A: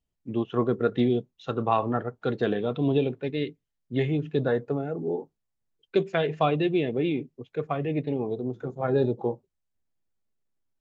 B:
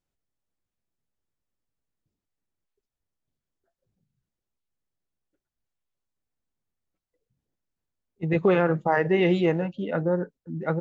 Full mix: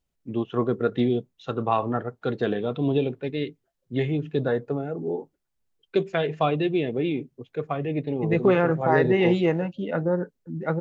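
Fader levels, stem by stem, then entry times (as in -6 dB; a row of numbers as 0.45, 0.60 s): +0.5, +0.5 dB; 0.00, 0.00 s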